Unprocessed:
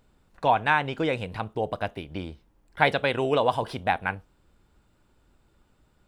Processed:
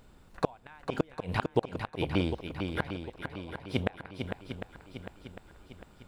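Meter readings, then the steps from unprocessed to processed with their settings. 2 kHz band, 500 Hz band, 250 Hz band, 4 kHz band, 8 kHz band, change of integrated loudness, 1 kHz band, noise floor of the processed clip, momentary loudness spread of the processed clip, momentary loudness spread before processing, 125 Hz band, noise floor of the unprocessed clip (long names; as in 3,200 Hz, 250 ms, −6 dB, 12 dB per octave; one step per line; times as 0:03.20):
−12.0 dB, −7.5 dB, −0.5 dB, −7.0 dB, can't be measured, −8.5 dB, −13.0 dB, −58 dBFS, 18 LU, 14 LU, −1.0 dB, −65 dBFS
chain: gate with flip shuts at −18 dBFS, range −37 dB
feedback echo with a long and a short gap by turns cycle 752 ms, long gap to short 1.5 to 1, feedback 44%, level −6.5 dB
level +6 dB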